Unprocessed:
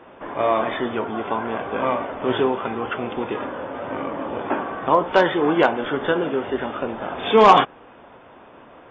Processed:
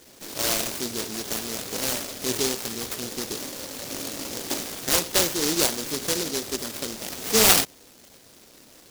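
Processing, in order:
short delay modulated by noise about 5,100 Hz, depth 0.34 ms
level −5.5 dB

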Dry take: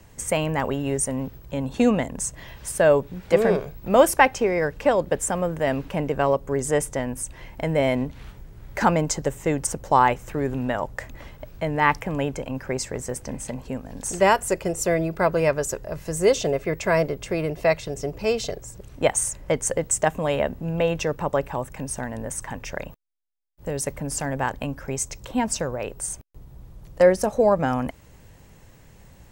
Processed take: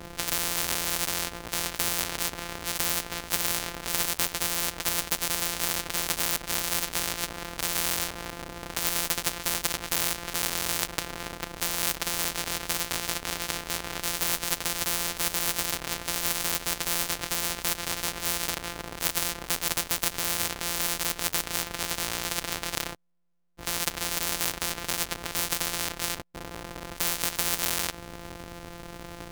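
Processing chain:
samples sorted by size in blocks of 256 samples
every bin compressed towards the loudest bin 10 to 1

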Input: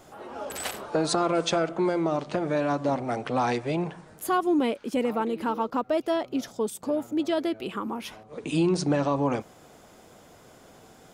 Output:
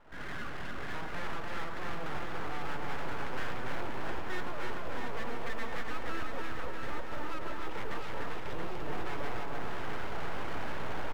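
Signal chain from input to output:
camcorder AGC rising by 62 dB per second
phaser with its sweep stopped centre 1,500 Hz, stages 6
repeating echo 295 ms, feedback 44%, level −4 dB
soft clipping −26 dBFS, distortion −13 dB
low-pass filter 1,900 Hz 24 dB per octave
full-wave rectification
delay that swaps between a low-pass and a high-pass 338 ms, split 1,100 Hz, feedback 83%, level −4 dB
floating-point word with a short mantissa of 6 bits
level −3.5 dB

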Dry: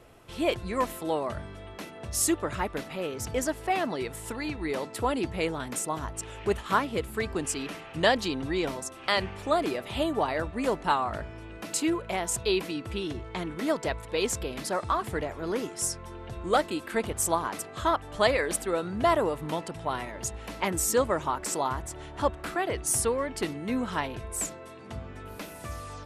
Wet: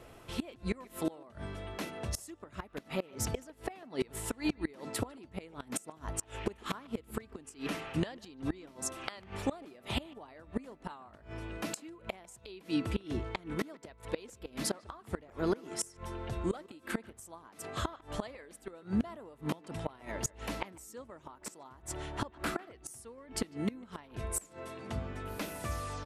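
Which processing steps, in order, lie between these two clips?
dynamic equaliser 240 Hz, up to +5 dB, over −44 dBFS, Q 2
gate with flip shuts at −21 dBFS, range −25 dB
far-end echo of a speakerphone 150 ms, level −21 dB
level +1 dB

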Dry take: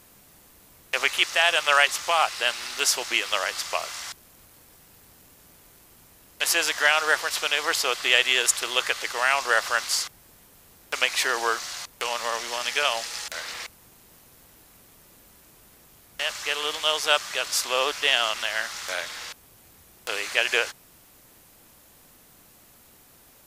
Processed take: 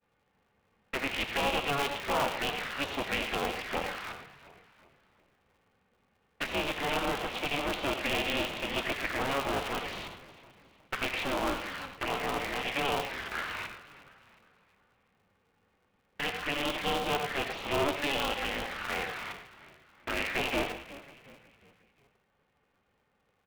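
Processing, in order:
downward expander −43 dBFS
tube saturation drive 28 dB, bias 0.55
high-pass filter 44 Hz
flanger swept by the level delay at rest 3.1 ms, full sweep at −30 dBFS
low-pass filter 2,700 Hz 24 dB per octave
echo with shifted repeats 361 ms, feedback 44%, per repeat −50 Hz, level −17 dB
on a send at −8 dB: convolution reverb RT60 0.35 s, pre-delay 50 ms
on the sum: ring modulator with a square carrier 140 Hz
level +6.5 dB

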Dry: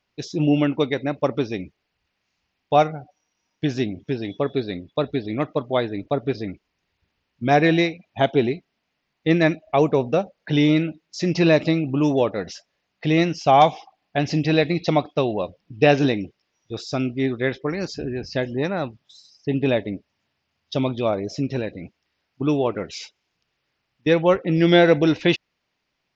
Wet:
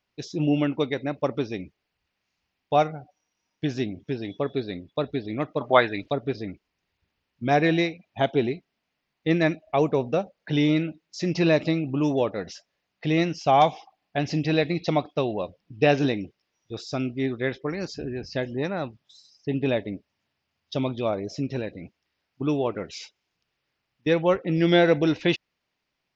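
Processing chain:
0:05.60–0:06.11: parametric band 760 Hz → 4,800 Hz +14.5 dB 2.3 octaves
level −4 dB

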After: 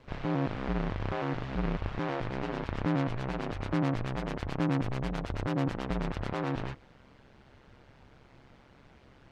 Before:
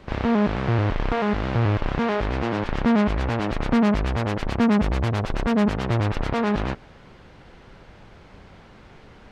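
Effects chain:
ring modulation 67 Hz
level −7 dB

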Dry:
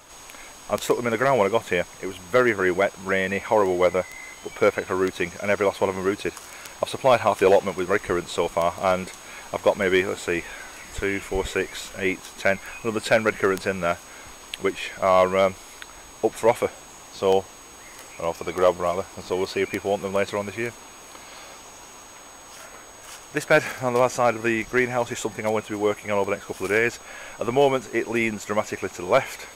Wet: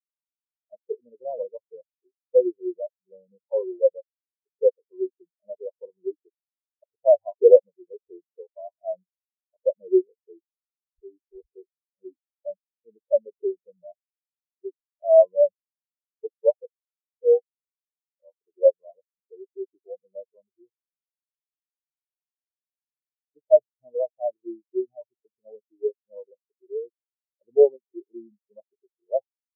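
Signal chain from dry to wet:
inverse Chebyshev band-stop filter 1,400–2,800 Hz, stop band 40 dB
every bin expanded away from the loudest bin 4 to 1
level +5 dB

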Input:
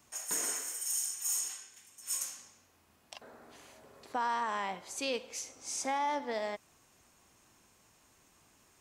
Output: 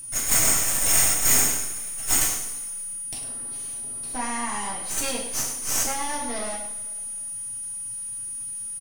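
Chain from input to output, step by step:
bass and treble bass +15 dB, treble +14 dB
half-wave rectification
steady tone 9,600 Hz −35 dBFS
on a send: single-tap delay 102 ms −10.5 dB
on the sum: coupled-rooms reverb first 0.39 s, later 2 s, from −18 dB, DRR −3 dB
level +1.5 dB

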